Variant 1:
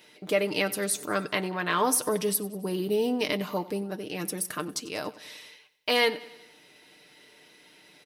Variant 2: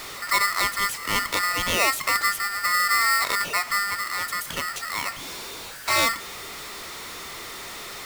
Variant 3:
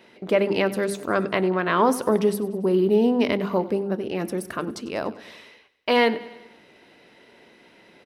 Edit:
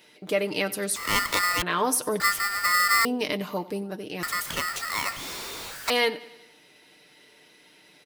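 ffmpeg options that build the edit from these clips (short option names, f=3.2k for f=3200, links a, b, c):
-filter_complex "[1:a]asplit=3[a][b][c];[0:a]asplit=4[d][e][f][g];[d]atrim=end=0.962[h];[a]atrim=start=0.958:end=1.622[i];[e]atrim=start=1.618:end=2.202[j];[b]atrim=start=2.198:end=3.052[k];[f]atrim=start=3.048:end=4.232[l];[c]atrim=start=4.228:end=5.902[m];[g]atrim=start=5.898[n];[h][i]acrossfade=d=0.004:c1=hsin:c2=hsin[o];[o][j]acrossfade=d=0.004:c1=hsin:c2=hsin[p];[p][k]acrossfade=d=0.004:c1=hsin:c2=hsin[q];[q][l]acrossfade=d=0.004:c1=hsin:c2=hsin[r];[r][m]acrossfade=d=0.004:c1=hsin:c2=hsin[s];[s][n]acrossfade=d=0.004:c1=hsin:c2=hsin"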